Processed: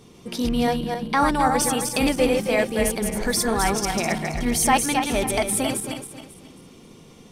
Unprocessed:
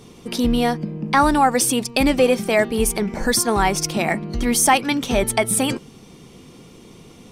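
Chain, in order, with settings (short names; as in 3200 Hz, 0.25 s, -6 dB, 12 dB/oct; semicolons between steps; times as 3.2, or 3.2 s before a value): regenerating reverse delay 0.135 s, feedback 57%, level -4 dB; gain -5 dB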